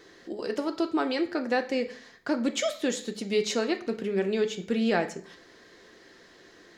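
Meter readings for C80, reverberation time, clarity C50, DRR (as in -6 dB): 18.0 dB, 0.45 s, 14.0 dB, 5.5 dB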